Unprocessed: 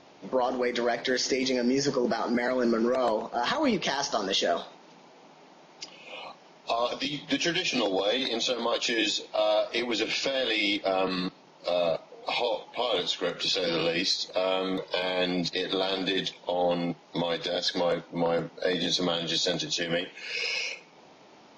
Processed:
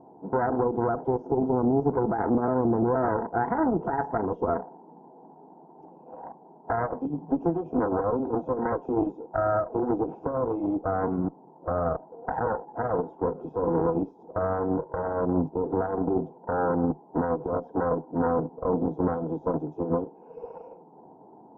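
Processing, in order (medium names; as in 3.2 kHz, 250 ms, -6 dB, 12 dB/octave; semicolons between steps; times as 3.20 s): elliptic low-pass 940 Hz, stop band 50 dB; peak limiter -21 dBFS, peak gain reduction 7 dB; Chebyshev shaper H 2 -7 dB, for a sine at -21 dBFS; comb of notches 580 Hz; trim +5 dB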